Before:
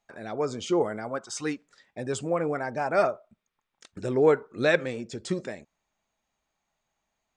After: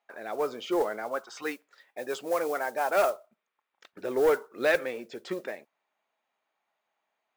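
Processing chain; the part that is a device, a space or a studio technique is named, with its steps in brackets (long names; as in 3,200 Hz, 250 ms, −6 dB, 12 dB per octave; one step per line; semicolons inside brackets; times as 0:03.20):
carbon microphone (band-pass filter 430–3,000 Hz; soft clipping −18 dBFS, distortion −16 dB; noise that follows the level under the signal 24 dB)
0:01.42–0:03.10: bass and treble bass −6 dB, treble +6 dB
level +2 dB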